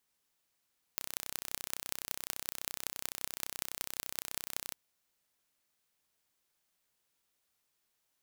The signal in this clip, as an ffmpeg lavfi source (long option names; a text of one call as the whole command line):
ffmpeg -f lavfi -i "aevalsrc='0.501*eq(mod(n,1387),0)*(0.5+0.5*eq(mod(n,8322),0))':duration=3.77:sample_rate=44100" out.wav